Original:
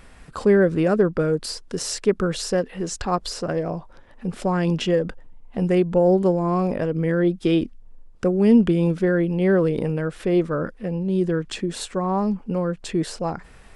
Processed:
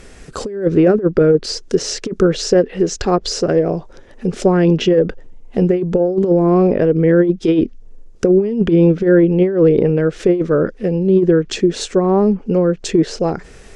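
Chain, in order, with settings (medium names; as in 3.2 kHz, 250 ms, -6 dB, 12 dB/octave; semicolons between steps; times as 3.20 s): fifteen-band graphic EQ 400 Hz +9 dB, 1 kHz -6 dB, 6.3 kHz +9 dB; compressor with a negative ratio -15 dBFS, ratio -0.5; low-pass that closes with the level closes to 2.6 kHz, closed at -14 dBFS; trim +4.5 dB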